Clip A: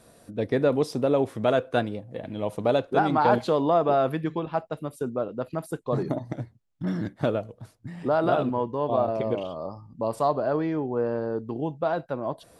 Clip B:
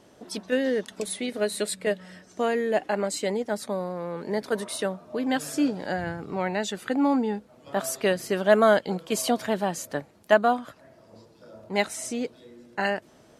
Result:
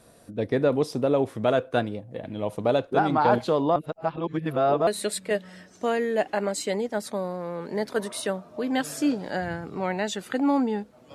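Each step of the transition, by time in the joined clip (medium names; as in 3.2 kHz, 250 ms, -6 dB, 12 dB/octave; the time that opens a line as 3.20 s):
clip A
3.76–4.87 s: reverse
4.87 s: go over to clip B from 1.43 s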